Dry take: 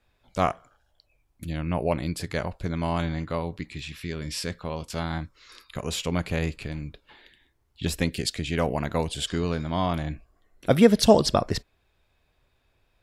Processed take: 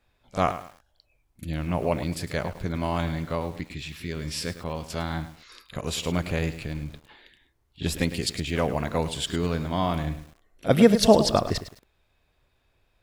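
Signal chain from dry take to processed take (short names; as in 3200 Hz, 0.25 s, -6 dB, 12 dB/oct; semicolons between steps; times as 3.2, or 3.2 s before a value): reverse echo 39 ms -16.5 dB; lo-fi delay 0.105 s, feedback 35%, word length 7-bit, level -12 dB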